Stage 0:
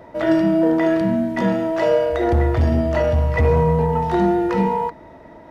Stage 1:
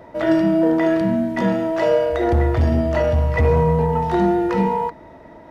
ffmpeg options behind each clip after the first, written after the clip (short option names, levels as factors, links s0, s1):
-af anull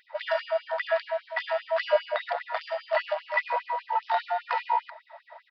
-af "aresample=11025,aresample=44100,afftfilt=real='re*gte(b*sr/1024,490*pow(2700/490,0.5+0.5*sin(2*PI*5*pts/sr)))':imag='im*gte(b*sr/1024,490*pow(2700/490,0.5+0.5*sin(2*PI*5*pts/sr)))':win_size=1024:overlap=0.75"